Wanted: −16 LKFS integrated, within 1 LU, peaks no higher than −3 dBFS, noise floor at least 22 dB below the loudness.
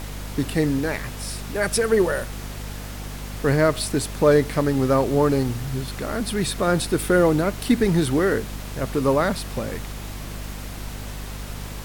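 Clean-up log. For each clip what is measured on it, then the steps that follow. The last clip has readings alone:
mains hum 50 Hz; hum harmonics up to 250 Hz; level of the hum −31 dBFS; background noise floor −34 dBFS; target noise floor −44 dBFS; integrated loudness −22.0 LKFS; sample peak −6.5 dBFS; target loudness −16.0 LKFS
→ hum removal 50 Hz, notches 5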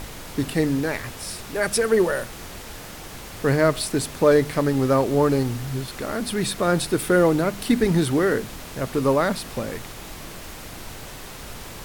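mains hum none found; background noise floor −38 dBFS; target noise floor −45 dBFS
→ noise reduction from a noise print 7 dB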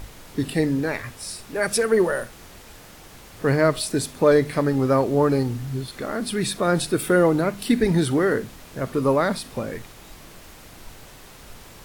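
background noise floor −45 dBFS; integrated loudness −22.5 LKFS; sample peak −6.0 dBFS; target loudness −16.0 LKFS
→ level +6.5 dB
brickwall limiter −3 dBFS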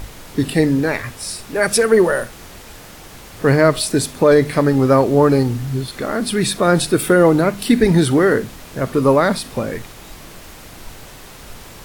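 integrated loudness −16.0 LKFS; sample peak −3.0 dBFS; background noise floor −39 dBFS

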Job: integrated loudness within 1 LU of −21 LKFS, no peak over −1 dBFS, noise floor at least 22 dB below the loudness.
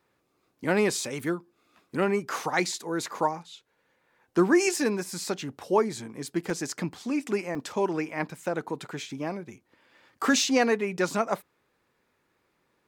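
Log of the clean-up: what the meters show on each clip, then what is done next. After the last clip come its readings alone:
number of dropouts 2; longest dropout 2.3 ms; integrated loudness −28.0 LKFS; sample peak −10.5 dBFS; target loudness −21.0 LKFS
→ repair the gap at 0:06.50/0:07.55, 2.3 ms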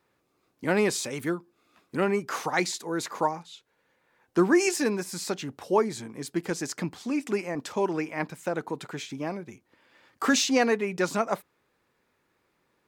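number of dropouts 0; integrated loudness −28.0 LKFS; sample peak −10.5 dBFS; target loudness −21.0 LKFS
→ level +7 dB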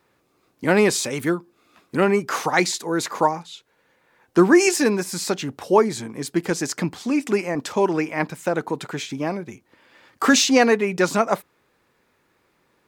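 integrated loudness −21.0 LKFS; sample peak −3.5 dBFS; background noise floor −66 dBFS

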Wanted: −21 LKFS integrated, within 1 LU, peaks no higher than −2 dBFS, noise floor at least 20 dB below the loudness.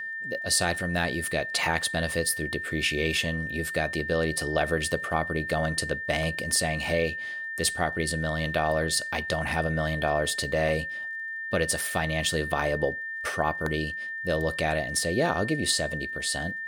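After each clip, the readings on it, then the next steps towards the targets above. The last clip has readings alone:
crackle rate 38 per second; interfering tone 1,800 Hz; level of the tone −32 dBFS; integrated loudness −27.0 LKFS; sample peak −10.0 dBFS; target loudness −21.0 LKFS
→ click removal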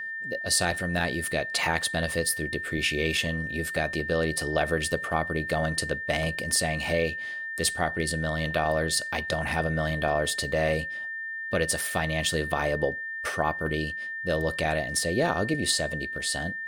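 crackle rate 0.60 per second; interfering tone 1,800 Hz; level of the tone −32 dBFS
→ notch filter 1,800 Hz, Q 30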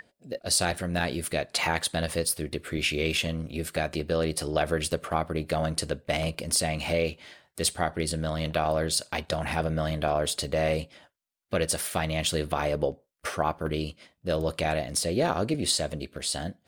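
interfering tone none found; integrated loudness −28.5 LKFS; sample peak −10.5 dBFS; target loudness −21.0 LKFS
→ level +7.5 dB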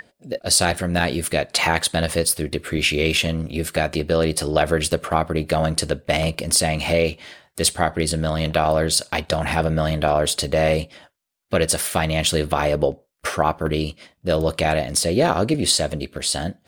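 integrated loudness −21.0 LKFS; sample peak −3.0 dBFS; background noise floor −65 dBFS

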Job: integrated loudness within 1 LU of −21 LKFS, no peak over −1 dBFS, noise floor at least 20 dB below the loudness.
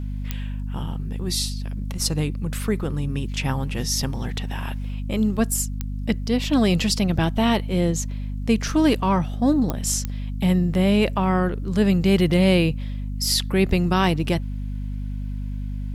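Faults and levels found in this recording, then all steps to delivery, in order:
number of clicks 4; mains hum 50 Hz; hum harmonics up to 250 Hz; level of the hum −26 dBFS; integrated loudness −23.0 LKFS; sample peak −6.0 dBFS; target loudness −21.0 LKFS
→ click removal
hum removal 50 Hz, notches 5
level +2 dB

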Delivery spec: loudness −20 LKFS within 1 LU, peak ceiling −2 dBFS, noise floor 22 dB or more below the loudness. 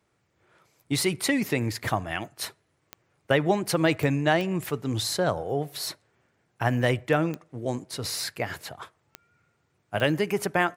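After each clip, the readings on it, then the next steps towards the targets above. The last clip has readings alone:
number of clicks 8; integrated loudness −27.0 LKFS; sample peak −7.5 dBFS; target loudness −20.0 LKFS
→ click removal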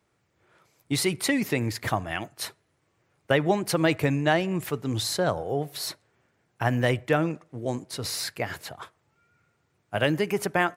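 number of clicks 0; integrated loudness −27.0 LKFS; sample peak −7.5 dBFS; target loudness −20.0 LKFS
→ level +7 dB
brickwall limiter −2 dBFS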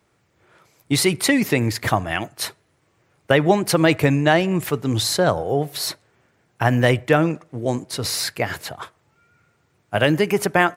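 integrated loudness −20.0 LKFS; sample peak −2.0 dBFS; background noise floor −65 dBFS

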